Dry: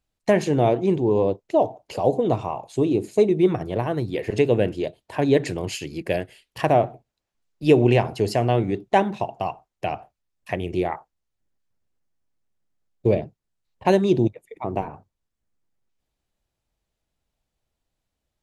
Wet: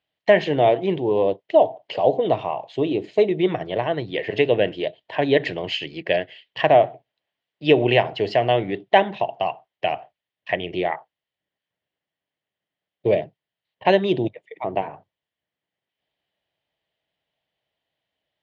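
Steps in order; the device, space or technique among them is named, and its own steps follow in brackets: kitchen radio (speaker cabinet 170–4300 Hz, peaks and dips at 230 Hz -8 dB, 350 Hz -3 dB, 640 Hz +5 dB, 1300 Hz -4 dB, 1900 Hz +8 dB, 3100 Hz +10 dB); gain +1 dB

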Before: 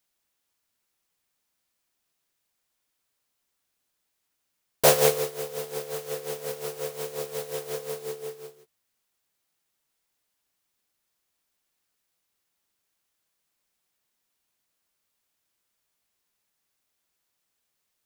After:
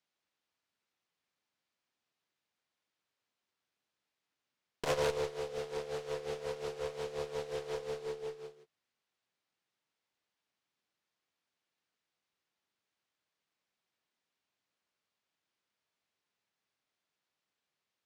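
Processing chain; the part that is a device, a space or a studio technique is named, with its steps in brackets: valve radio (BPF 98–4500 Hz; tube stage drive 23 dB, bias 0.5; core saturation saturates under 230 Hz); gain -2 dB

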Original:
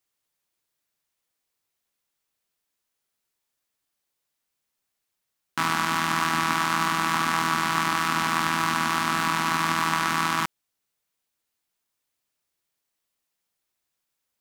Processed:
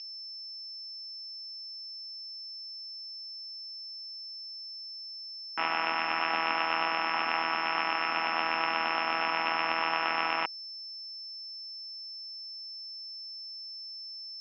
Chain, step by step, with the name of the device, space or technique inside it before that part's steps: toy sound module (decimation joined by straight lines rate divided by 6×; pulse-width modulation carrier 5300 Hz; speaker cabinet 600–4100 Hz, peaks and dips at 720 Hz +4 dB, 1100 Hz -9 dB, 1600 Hz -6 dB, 2700 Hz +10 dB, 4000 Hz -7 dB)

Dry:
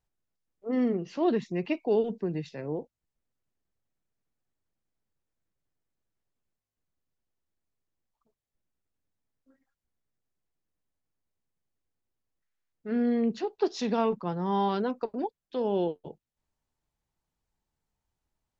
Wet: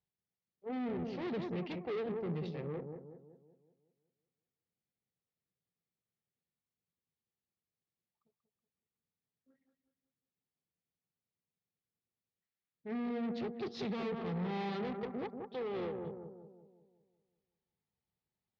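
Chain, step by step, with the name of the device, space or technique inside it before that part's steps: analogue delay pedal into a guitar amplifier (analogue delay 0.186 s, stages 2048, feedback 48%, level -8 dB; tube stage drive 34 dB, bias 0.8; speaker cabinet 110–4300 Hz, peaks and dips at 170 Hz +4 dB, 300 Hz -7 dB, 630 Hz -6 dB, 980 Hz -8 dB, 1500 Hz -8 dB, 2800 Hz -3 dB); gain +1 dB

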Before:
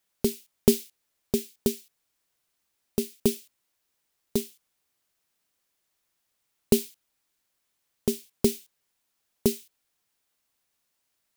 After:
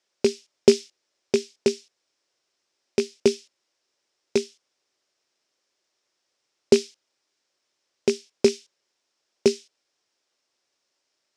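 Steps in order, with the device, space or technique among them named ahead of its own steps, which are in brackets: car door speaker with a rattle (rattling part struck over -30 dBFS, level -20 dBFS; speaker cabinet 110–7200 Hz, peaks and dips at 180 Hz -8 dB, 370 Hz +7 dB, 560 Hz +6 dB, 5300 Hz +7 dB); low shelf 110 Hz -8 dB; gain +2.5 dB

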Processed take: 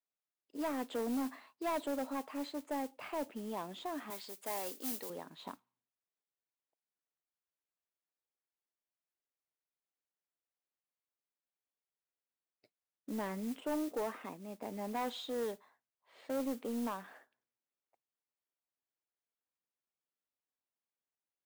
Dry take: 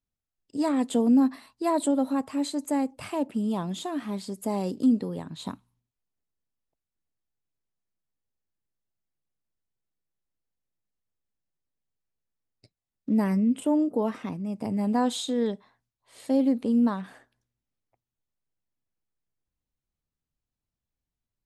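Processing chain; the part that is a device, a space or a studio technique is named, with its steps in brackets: carbon microphone (BPF 430–2700 Hz; soft clip -26.5 dBFS, distortion -12 dB; modulation noise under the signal 17 dB); 4.1–5.1 tilt +3.5 dB/oct; gain -4 dB

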